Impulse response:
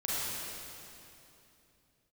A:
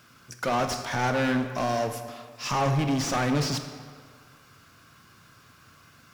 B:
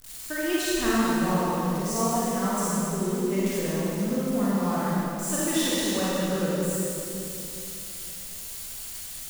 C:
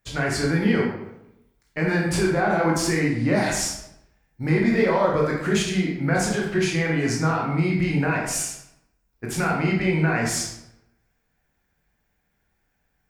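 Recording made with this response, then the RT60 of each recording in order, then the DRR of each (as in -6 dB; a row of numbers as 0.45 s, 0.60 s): B; 1.8 s, 2.9 s, 0.80 s; 7.0 dB, -8.5 dB, -3.0 dB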